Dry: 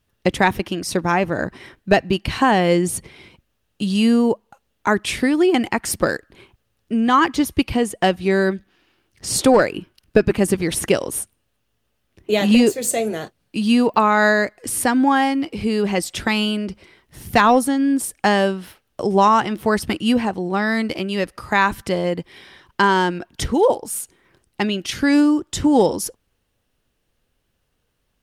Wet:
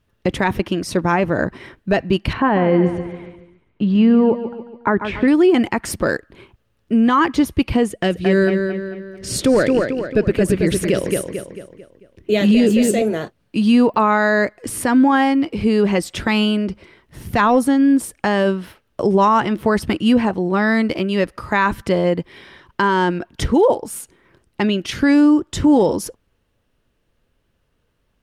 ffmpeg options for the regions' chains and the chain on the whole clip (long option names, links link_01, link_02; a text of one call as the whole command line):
ffmpeg -i in.wav -filter_complex "[0:a]asettb=1/sr,asplit=3[link_01][link_02][link_03];[link_01]atrim=end=2.334[link_04];[link_02]atrim=start=2.33:end=5.28,asetpts=PTS-STARTPTS,afade=type=in:duration=0.004:curve=qsin,afade=type=out:start_time=2.946:duration=0.004:curve=qsin,lowpass=2000,aecho=1:1:142|284|426|568|710:0.251|0.121|0.0579|0.0278|0.0133,atrim=end_sample=130095[link_05];[link_03]atrim=start=5.276[link_06];[link_04][link_05]acrossfade=duration=0.004:curve1=hsin:curve2=qsin[link_07];[link_07][link_06]acrossfade=duration=0.004:curve1=qsin:curve2=hsin,asettb=1/sr,asplit=3[link_08][link_09][link_10];[link_08]atrim=end=7.884[link_11];[link_09]atrim=start=7.88:end=13.02,asetpts=PTS-STARTPTS,afade=type=in:duration=0.004:curve=qsin,afade=type=out:start_time=5.136:duration=0.004:curve=qsin,equalizer=frequency=930:width_type=o:width=0.89:gain=-9.5,asplit=2[link_12][link_13];[link_13]adelay=222,lowpass=frequency=4700:poles=1,volume=-6dB,asplit=2[link_14][link_15];[link_15]adelay=222,lowpass=frequency=4700:poles=1,volume=0.45,asplit=2[link_16][link_17];[link_17]adelay=222,lowpass=frequency=4700:poles=1,volume=0.45,asplit=2[link_18][link_19];[link_19]adelay=222,lowpass=frequency=4700:poles=1,volume=0.45,asplit=2[link_20][link_21];[link_21]adelay=222,lowpass=frequency=4700:poles=1,volume=0.45[link_22];[link_12][link_14][link_16][link_18][link_20][link_22]amix=inputs=6:normalize=0,atrim=end_sample=226674[link_23];[link_10]atrim=start=13.016[link_24];[link_11][link_23]acrossfade=duration=0.004:curve1=hsin:curve2=qsin[link_25];[link_25][link_24]acrossfade=duration=0.004:curve1=qsin:curve2=hsin,highshelf=frequency=3400:gain=-9.5,bandreject=frequency=770:width=12,alimiter=limit=-11dB:level=0:latency=1:release=34,volume=4.5dB" out.wav